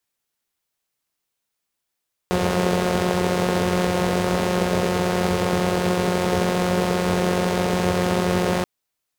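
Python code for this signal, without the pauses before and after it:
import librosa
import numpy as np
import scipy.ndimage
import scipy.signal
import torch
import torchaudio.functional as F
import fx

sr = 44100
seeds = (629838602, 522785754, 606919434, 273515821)

y = fx.engine_four(sr, seeds[0], length_s=6.33, rpm=5400, resonances_hz=(96.0, 190.0, 410.0))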